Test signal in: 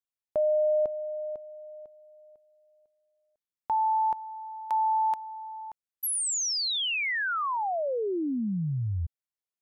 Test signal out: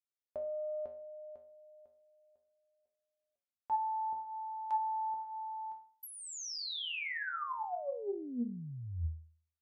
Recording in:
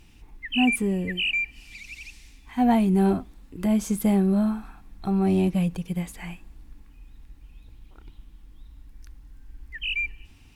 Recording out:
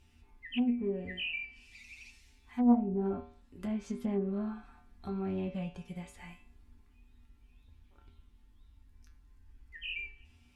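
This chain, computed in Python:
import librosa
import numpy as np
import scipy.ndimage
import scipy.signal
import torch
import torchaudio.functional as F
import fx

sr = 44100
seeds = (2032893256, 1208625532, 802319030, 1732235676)

y = fx.comb_fb(x, sr, f0_hz=80.0, decay_s=0.46, harmonics='odd', damping=0.2, mix_pct=90)
y = fx.env_lowpass_down(y, sr, base_hz=550.0, full_db=-28.0)
y = fx.doppler_dist(y, sr, depth_ms=0.2)
y = F.gain(torch.from_numpy(y), 2.5).numpy()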